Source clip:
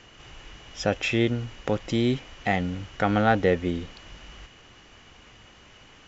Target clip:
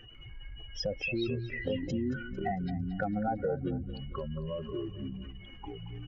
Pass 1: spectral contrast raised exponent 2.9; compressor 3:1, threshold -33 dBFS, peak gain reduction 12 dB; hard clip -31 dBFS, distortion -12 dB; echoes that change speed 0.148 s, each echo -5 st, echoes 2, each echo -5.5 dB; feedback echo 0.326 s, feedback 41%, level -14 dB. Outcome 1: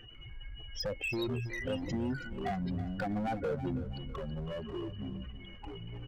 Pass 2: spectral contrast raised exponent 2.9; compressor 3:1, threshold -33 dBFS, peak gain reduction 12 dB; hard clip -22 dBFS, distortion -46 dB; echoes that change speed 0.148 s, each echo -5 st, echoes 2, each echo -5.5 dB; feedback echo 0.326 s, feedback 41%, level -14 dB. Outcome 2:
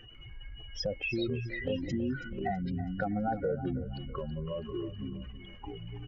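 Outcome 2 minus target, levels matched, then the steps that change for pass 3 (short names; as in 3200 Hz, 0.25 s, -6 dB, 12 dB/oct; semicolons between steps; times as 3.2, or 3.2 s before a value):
echo 0.101 s late
change: feedback echo 0.225 s, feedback 41%, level -14 dB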